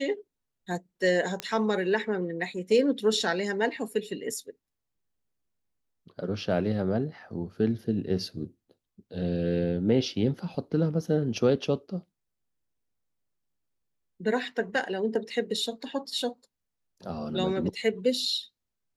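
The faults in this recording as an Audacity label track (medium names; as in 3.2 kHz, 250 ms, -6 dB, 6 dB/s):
1.400000	1.400000	pop -15 dBFS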